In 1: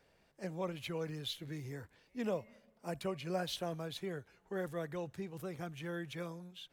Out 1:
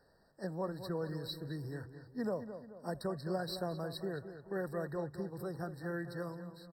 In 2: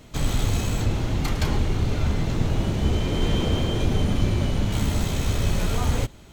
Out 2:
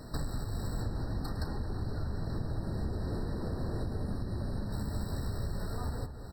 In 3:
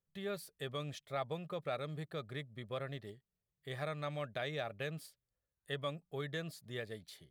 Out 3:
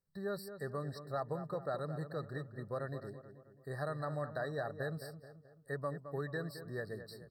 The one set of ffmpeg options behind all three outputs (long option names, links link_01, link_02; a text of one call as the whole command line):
ffmpeg -i in.wav -filter_complex "[0:a]acompressor=threshold=-33dB:ratio=16,asplit=2[link_01][link_02];[link_02]adelay=216,lowpass=frequency=2200:poles=1,volume=-10dB,asplit=2[link_03][link_04];[link_04]adelay=216,lowpass=frequency=2200:poles=1,volume=0.48,asplit=2[link_05][link_06];[link_06]adelay=216,lowpass=frequency=2200:poles=1,volume=0.48,asplit=2[link_07][link_08];[link_08]adelay=216,lowpass=frequency=2200:poles=1,volume=0.48,asplit=2[link_09][link_10];[link_10]adelay=216,lowpass=frequency=2200:poles=1,volume=0.48[link_11];[link_01][link_03][link_05][link_07][link_09][link_11]amix=inputs=6:normalize=0,afftfilt=real='re*eq(mod(floor(b*sr/1024/1900),2),0)':imag='im*eq(mod(floor(b*sr/1024/1900),2),0)':win_size=1024:overlap=0.75,volume=2dB" out.wav